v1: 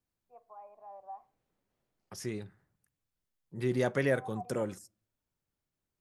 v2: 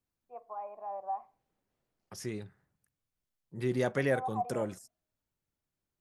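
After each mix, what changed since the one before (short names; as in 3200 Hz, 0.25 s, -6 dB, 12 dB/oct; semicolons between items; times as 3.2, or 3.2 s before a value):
first voice +9.5 dB; second voice: send off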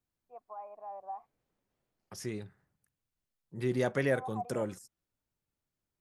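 reverb: off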